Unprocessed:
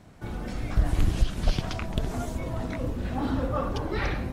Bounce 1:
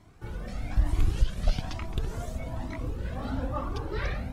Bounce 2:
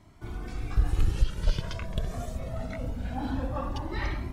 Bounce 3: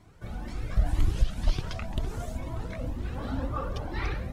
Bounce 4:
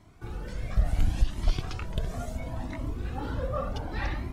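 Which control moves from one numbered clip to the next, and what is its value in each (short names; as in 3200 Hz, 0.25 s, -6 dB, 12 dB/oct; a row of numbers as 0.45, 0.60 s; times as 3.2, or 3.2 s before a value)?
cascading flanger, rate: 1.1, 0.24, 2, 0.71 Hz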